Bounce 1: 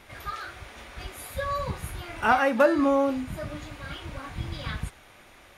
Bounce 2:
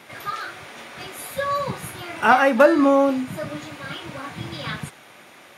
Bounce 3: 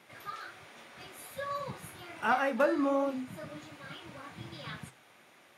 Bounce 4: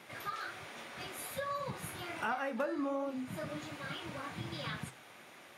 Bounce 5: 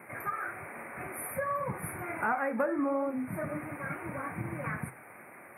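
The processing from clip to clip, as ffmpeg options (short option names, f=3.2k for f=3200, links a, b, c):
-af "highpass=f=130:w=0.5412,highpass=f=130:w=1.3066,volume=6dB"
-af "flanger=delay=4.8:depth=8.6:regen=-66:speed=1.3:shape=triangular,volume=-8.5dB"
-af "acompressor=threshold=-41dB:ratio=3,volume=4.5dB"
-af "asuperstop=centerf=4800:order=20:qfactor=0.74,volume=5.5dB"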